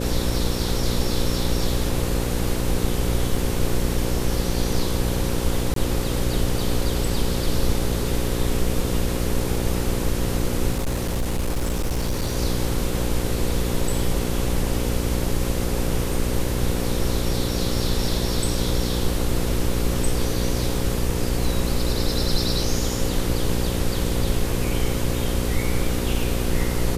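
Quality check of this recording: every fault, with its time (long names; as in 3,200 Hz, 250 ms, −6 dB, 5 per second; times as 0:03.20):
mains buzz 60 Hz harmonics 9 −26 dBFS
0:03.37: drop-out 2.8 ms
0:05.74–0:05.76: drop-out 23 ms
0:10.71–0:12.37: clipping −19.5 dBFS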